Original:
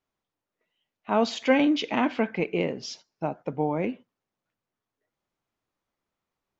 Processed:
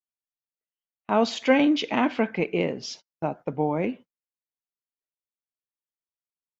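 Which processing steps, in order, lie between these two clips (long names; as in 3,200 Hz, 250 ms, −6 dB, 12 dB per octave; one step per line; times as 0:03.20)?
noise gate −44 dBFS, range −27 dB
level +1.5 dB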